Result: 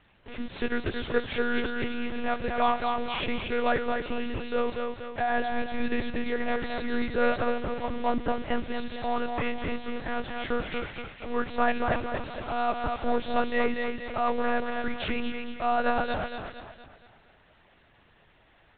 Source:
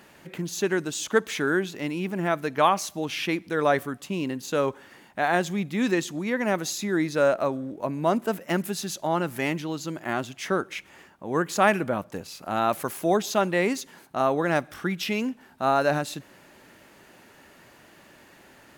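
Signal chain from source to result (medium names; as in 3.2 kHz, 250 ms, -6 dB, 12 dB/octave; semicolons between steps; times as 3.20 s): one-bit delta coder 64 kbps, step -32 dBFS; in parallel at -5 dB: hard clipper -22 dBFS, distortion -9 dB; on the sum: gate with hold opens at -26 dBFS; thinning echo 232 ms, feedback 47%, high-pass 170 Hz, level -4 dB; monotone LPC vocoder at 8 kHz 240 Hz; trim -6 dB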